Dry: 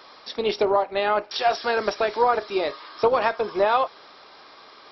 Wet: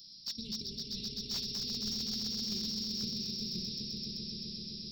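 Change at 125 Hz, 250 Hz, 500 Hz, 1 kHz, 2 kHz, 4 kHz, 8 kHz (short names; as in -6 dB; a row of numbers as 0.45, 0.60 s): +1.5 dB, -5.5 dB, -32.0 dB, under -40 dB, -29.0 dB, 0.0 dB, n/a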